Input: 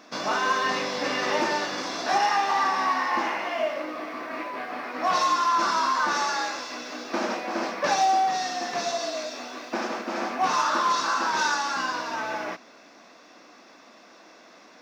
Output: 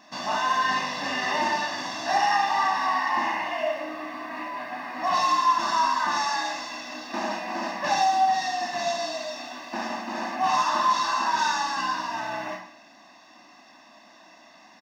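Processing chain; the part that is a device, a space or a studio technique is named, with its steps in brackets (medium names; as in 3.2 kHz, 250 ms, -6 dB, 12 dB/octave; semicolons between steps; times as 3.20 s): microphone above a desk (comb 1.1 ms, depth 79%; reverberation RT60 0.55 s, pre-delay 26 ms, DRR 2.5 dB); trim -4.5 dB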